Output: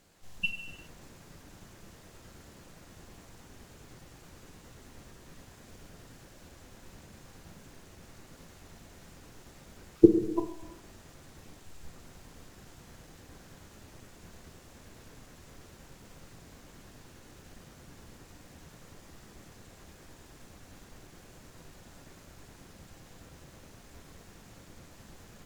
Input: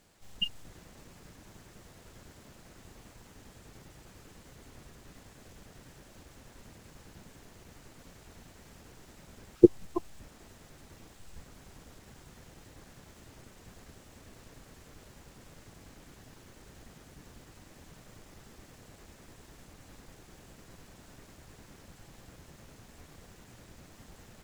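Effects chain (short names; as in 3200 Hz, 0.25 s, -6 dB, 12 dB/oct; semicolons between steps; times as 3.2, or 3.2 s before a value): speed mistake 25 fps video run at 24 fps; non-linear reverb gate 0.43 s falling, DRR 5.5 dB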